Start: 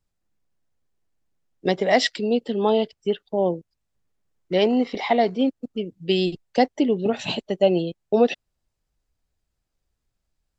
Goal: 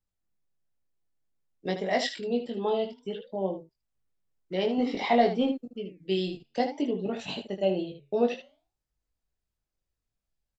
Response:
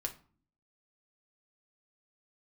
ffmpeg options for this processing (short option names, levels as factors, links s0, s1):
-filter_complex "[0:a]asettb=1/sr,asplit=3[s0][s1][s2];[s0]atrim=end=4.784[s3];[s1]atrim=start=4.78:end=5.61,asetpts=PTS-STARTPTS,afade=t=in:d=0.004:c=qsin,afade=t=out:st=0.826:d=0.004:c=qsin,acontrast=45[s4];[s2]atrim=start=5.606[s5];[s3][s4]acrossfade=d=0.004:c1=hsin:c2=qsin[s6];[s6][s5]acrossfade=d=0.004:c1=qsin:c2=hsin,flanger=delay=3.8:depth=7.4:regen=-87:speed=0.55:shape=sinusoidal,asplit=2[s7][s8];[s8]aecho=0:1:21|77:0.631|0.355[s9];[s7][s9]amix=inputs=2:normalize=0,volume=0.531"